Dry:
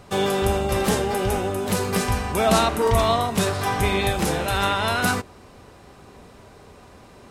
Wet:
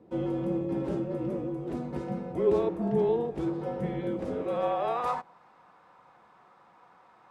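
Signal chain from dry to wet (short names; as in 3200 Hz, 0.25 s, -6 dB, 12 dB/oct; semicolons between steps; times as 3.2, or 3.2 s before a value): frequency shift -250 Hz; band-pass sweep 350 Hz -> 1100 Hz, 4.15–5.39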